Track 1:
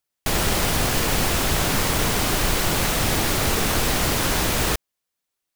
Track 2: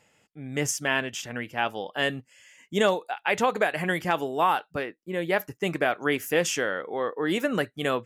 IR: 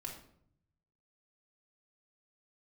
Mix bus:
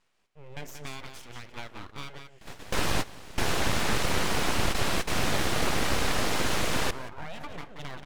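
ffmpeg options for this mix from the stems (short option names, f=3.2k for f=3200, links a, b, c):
-filter_complex "[0:a]adelay=2150,volume=-2dB,asplit=2[a][b];[b]volume=-20dB[c];[1:a]acompressor=threshold=-26dB:ratio=16,volume=-8dB,asplit=3[d][e][f];[d]atrim=end=2.86,asetpts=PTS-STARTPTS,afade=t=out:st=2.856:d=0.004:c=hsin[g];[e]atrim=start=2.86:end=3.37,asetpts=PTS-STARTPTS,volume=0[h];[f]atrim=start=3.37,asetpts=PTS-STARTPTS,afade=t=in:d=0.004:c=hsin[i];[g][h][i]concat=n=3:v=0:a=1,asplit=4[j][k][l][m];[k]volume=-8dB[n];[l]volume=-5dB[o];[m]apad=whole_len=339857[p];[a][p]sidechaingate=range=-25dB:threshold=-58dB:ratio=16:detection=peak[q];[2:a]atrim=start_sample=2205[r];[n][r]afir=irnorm=-1:irlink=0[s];[c][o]amix=inputs=2:normalize=0,aecho=0:1:181:1[t];[q][j][s][t]amix=inputs=4:normalize=0,lowpass=12k,highshelf=f=6.1k:g=-11,aeval=exprs='abs(val(0))':c=same"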